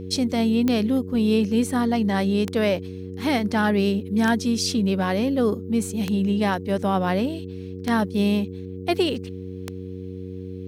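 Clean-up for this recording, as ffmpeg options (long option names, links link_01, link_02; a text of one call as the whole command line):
ffmpeg -i in.wav -af "adeclick=threshold=4,bandreject=frequency=93.2:width_type=h:width=4,bandreject=frequency=186.4:width_type=h:width=4,bandreject=frequency=279.6:width_type=h:width=4,bandreject=frequency=372.8:width_type=h:width=4,bandreject=frequency=466:width_type=h:width=4" out.wav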